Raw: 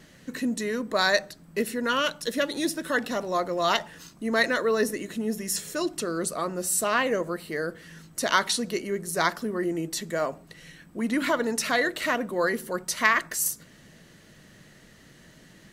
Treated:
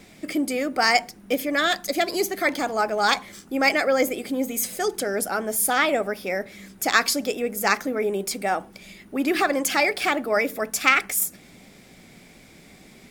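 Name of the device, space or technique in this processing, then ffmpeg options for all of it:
nightcore: -af "asetrate=52920,aresample=44100,volume=3.5dB"

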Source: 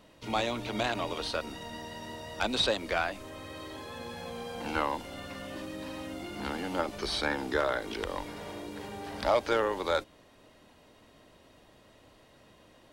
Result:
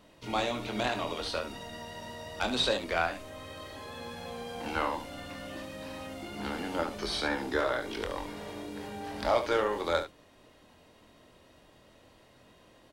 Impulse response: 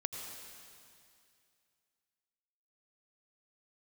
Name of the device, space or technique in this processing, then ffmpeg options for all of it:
slapback doubling: -filter_complex "[0:a]asplit=3[link_01][link_02][link_03];[link_02]adelay=24,volume=-7dB[link_04];[link_03]adelay=72,volume=-10dB[link_05];[link_01][link_04][link_05]amix=inputs=3:normalize=0,volume=-1.5dB"

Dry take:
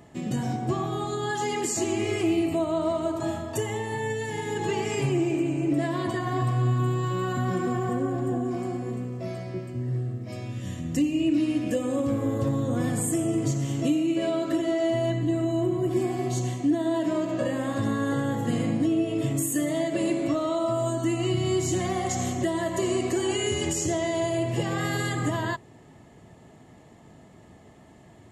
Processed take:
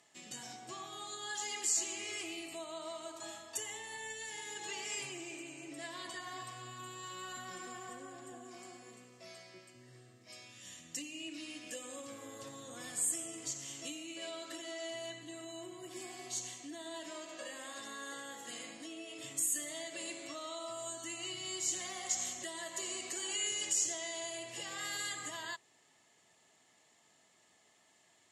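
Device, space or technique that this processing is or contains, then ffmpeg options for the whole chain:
piezo pickup straight into a mixer: -filter_complex "[0:a]asettb=1/sr,asplit=3[link_01][link_02][link_03];[link_01]atrim=end=17.114[link_04];[link_02]atrim=start=17.11:end=19.19,asetpts=PTS-STARTPTS,afade=type=in:duration=0.004:curve=qsin,afade=type=out:start_time=2.076:duration=0.004:curve=qsin,highpass=220[link_05];[link_03]atrim=start=19.186[link_06];[link_04][link_05]acrossfade=duration=0.004:curve1=hsin:curve2=qsin[link_07];[link_07][link_06]acrossfade=duration=0.004:curve1=qsin:curve2=hsin,lowpass=6900,aderivative,volume=2.5dB"

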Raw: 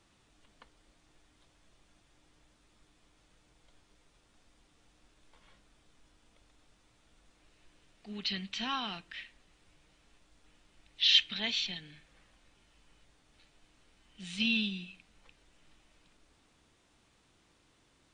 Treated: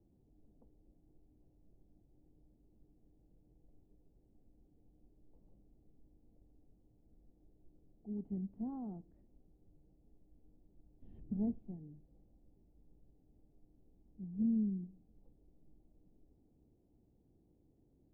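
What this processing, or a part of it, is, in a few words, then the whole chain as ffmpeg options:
under water: -filter_complex "[0:a]asettb=1/sr,asplit=3[link_01][link_02][link_03];[link_01]atrim=end=11.024[link_04];[link_02]atrim=start=11.02:end=11.59,asetpts=PTS-STARTPTS,afade=type=in:duration=0.004:curve=qsin,afade=type=out:start_time=0.566:duration=0.004:curve=qsin,lowshelf=frequency=280:gain=11.5[link_05];[link_03]atrim=start=11.586[link_06];[link_04][link_05]acrossfade=duration=0.004:curve1=hsin:curve2=qsin[link_07];[link_07][link_06]acrossfade=duration=0.004:curve1=qsin:curve2=hsin,lowpass=frequency=400:width=0.5412,lowpass=frequency=400:width=1.3066,equalizer=frequency=790:width_type=o:width=0.56:gain=11,volume=1.5dB"

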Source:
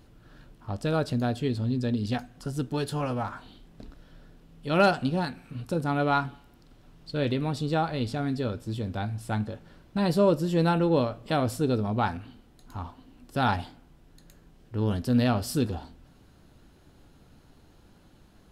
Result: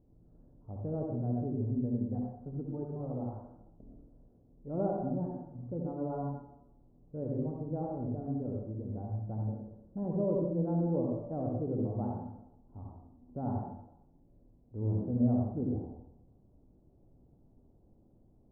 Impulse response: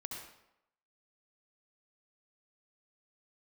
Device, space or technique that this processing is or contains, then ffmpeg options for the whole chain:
next room: -filter_complex "[0:a]lowpass=frequency=670:width=0.5412,lowpass=frequency=670:width=1.3066[link_01];[1:a]atrim=start_sample=2205[link_02];[link_01][link_02]afir=irnorm=-1:irlink=0,volume=-5.5dB"

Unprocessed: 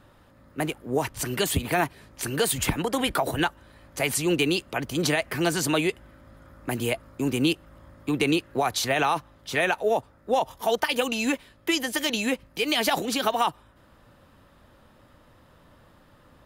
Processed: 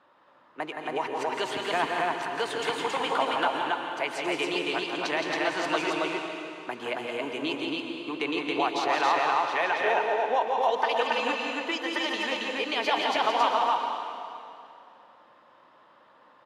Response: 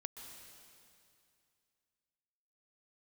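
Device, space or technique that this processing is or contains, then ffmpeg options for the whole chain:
station announcement: -filter_complex "[0:a]highpass=410,lowpass=3800,equalizer=frequency=1000:width_type=o:width=0.54:gain=7,aecho=1:1:169.1|274.1:0.501|0.794[link_01];[1:a]atrim=start_sample=2205[link_02];[link_01][link_02]afir=irnorm=-1:irlink=0"

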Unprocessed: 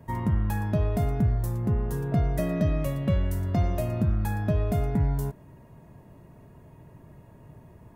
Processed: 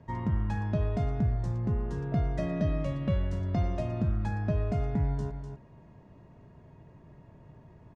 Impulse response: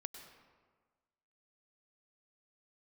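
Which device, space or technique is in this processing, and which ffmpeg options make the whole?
ducked delay: -filter_complex "[0:a]lowpass=frequency=6100:width=0.5412,lowpass=frequency=6100:width=1.3066,asettb=1/sr,asplit=3[link_01][link_02][link_03];[link_01]atrim=end=4.284[link_04];[link_02]atrim=start=4.28:end=4.8,asetpts=PTS-STARTPTS,afade=type=in:duration=0.004:curve=qsin,afade=type=out:start_time=0.516:duration=0.004:curve=qsin,bandreject=frequency=3500:width=7.5[link_05];[link_03]atrim=start=4.796[link_06];[link_04][link_05]acrossfade=duration=0.004:curve1=hsin:curve2=qsin[link_07];[link_07][link_06]acrossfade=duration=0.004:curve1=qsin:curve2=hsin,asplit=3[link_08][link_09][link_10];[link_09]adelay=249,volume=-8dB[link_11];[link_10]apad=whole_len=361658[link_12];[link_11][link_12]sidechaincompress=threshold=-31dB:ratio=8:attack=16:release=103[link_13];[link_08][link_13]amix=inputs=2:normalize=0,volume=-4dB"

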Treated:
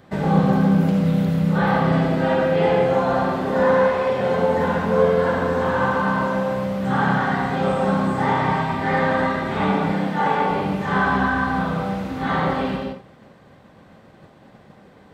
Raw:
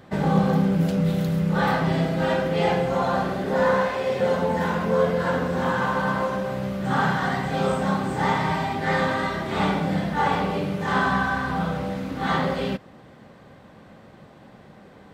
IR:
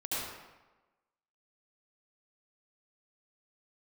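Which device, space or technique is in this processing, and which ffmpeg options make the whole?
keyed gated reverb: -filter_complex "[0:a]asplit=3[link_01][link_02][link_03];[1:a]atrim=start_sample=2205[link_04];[link_02][link_04]afir=irnorm=-1:irlink=0[link_05];[link_03]apad=whole_len=667263[link_06];[link_05][link_06]sidechaingate=range=-33dB:threshold=-45dB:ratio=16:detection=peak,volume=-5dB[link_07];[link_01][link_07]amix=inputs=2:normalize=0,asettb=1/sr,asplit=3[link_08][link_09][link_10];[link_08]atrim=end=9.924[link_11];[link_09]atrim=start=9.92:end=10.51,asetpts=PTS-STARTPTS,afade=type=in:duration=0.004:curve=qsin,afade=type=out:start_time=0.586:duration=0.004:curve=qsin,highpass=180[link_12];[link_10]atrim=start=10.506[link_13];[link_11][link_12]acrossfade=duration=0.004:curve1=hsin:curve2=qsin[link_14];[link_14][link_13]acrossfade=duration=0.004:curve1=qsin:curve2=hsin,acrossover=split=3100[link_15][link_16];[link_16]acompressor=threshold=-44dB:ratio=4:attack=1:release=60[link_17];[link_15][link_17]amix=inputs=2:normalize=0,volume=-1.5dB"

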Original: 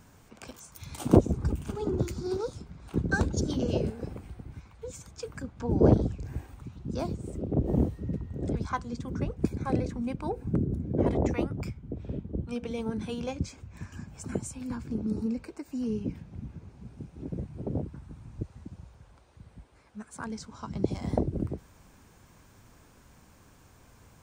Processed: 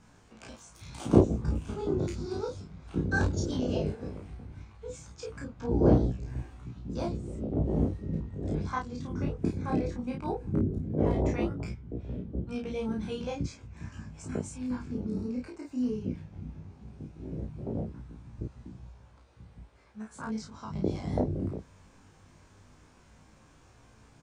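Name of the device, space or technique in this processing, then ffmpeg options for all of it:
double-tracked vocal: -filter_complex "[0:a]asplit=2[link_01][link_02];[link_02]adelay=32,volume=-2dB[link_03];[link_01][link_03]amix=inputs=2:normalize=0,flanger=delay=17:depth=3.6:speed=0.16,lowpass=7600"

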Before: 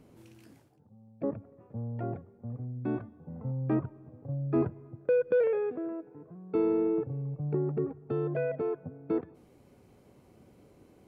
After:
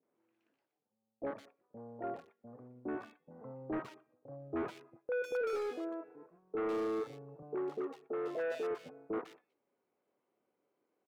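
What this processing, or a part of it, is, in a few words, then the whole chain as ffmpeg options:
walkie-talkie: -filter_complex "[0:a]highpass=440,lowpass=2400,asoftclip=type=hard:threshold=-33dB,agate=range=-18dB:threshold=-56dB:ratio=16:detection=peak,asettb=1/sr,asplit=3[link_01][link_02][link_03];[link_01]atrim=end=7.424[link_04];[link_02]atrim=start=7.42:end=8.71,asetpts=PTS-STARTPTS,afade=type=in:duration=0.004:curve=qsin,afade=type=out:start_time=1.286:duration=0.004:curve=qsin,highpass=210[link_05];[link_03]atrim=start=8.706[link_06];[link_04][link_05]acrossfade=duration=0.004:curve1=hsin:curve2=qsin[link_07];[link_07][link_06]acrossfade=duration=0.004:curve1=qsin:curve2=hsin,lowshelf=frequency=480:gain=-4,acrossover=split=680|2400[link_08][link_09][link_10];[link_09]adelay=30[link_11];[link_10]adelay=150[link_12];[link_08][link_11][link_12]amix=inputs=3:normalize=0,volume=3.5dB"

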